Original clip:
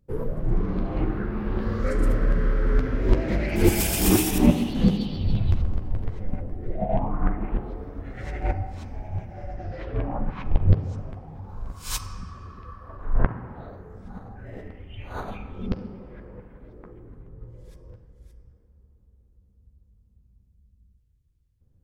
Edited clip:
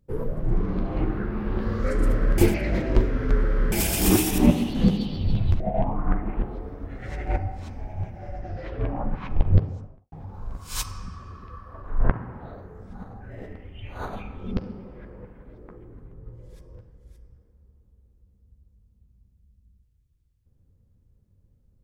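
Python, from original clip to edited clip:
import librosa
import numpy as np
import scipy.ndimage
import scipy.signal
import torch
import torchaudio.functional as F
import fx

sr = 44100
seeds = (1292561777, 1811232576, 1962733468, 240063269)

y = fx.studio_fade_out(x, sr, start_s=10.66, length_s=0.61)
y = fx.edit(y, sr, fx.reverse_span(start_s=2.38, length_s=1.34),
    fx.cut(start_s=5.6, length_s=1.15), tone=tone)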